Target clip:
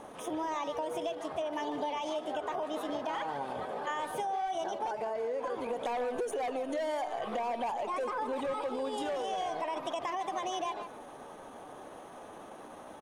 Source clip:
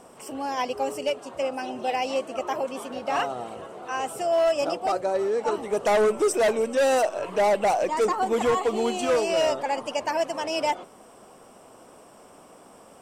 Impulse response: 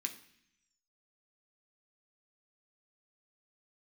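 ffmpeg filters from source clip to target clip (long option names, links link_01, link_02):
-filter_complex "[0:a]lowpass=frequency=3000:poles=1,bandreject=frequency=1200:width=9.4,alimiter=limit=-22.5dB:level=0:latency=1:release=50,acompressor=threshold=-34dB:ratio=20,asetrate=50951,aresample=44100,atempo=0.865537,asplit=2[link_01][link_02];[link_02]adelay=150,highpass=300,lowpass=3400,asoftclip=type=hard:threshold=-35.5dB,volume=-8dB[link_03];[link_01][link_03]amix=inputs=2:normalize=0,volume=2.5dB"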